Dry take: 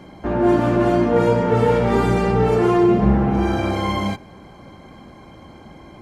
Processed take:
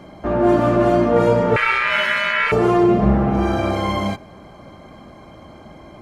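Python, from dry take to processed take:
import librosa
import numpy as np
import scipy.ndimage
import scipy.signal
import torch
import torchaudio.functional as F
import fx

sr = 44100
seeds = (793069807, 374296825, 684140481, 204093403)

y = fx.small_body(x, sr, hz=(630.0, 1200.0), ring_ms=35, db=8)
y = fx.ring_mod(y, sr, carrier_hz=1800.0, at=(1.56, 2.52))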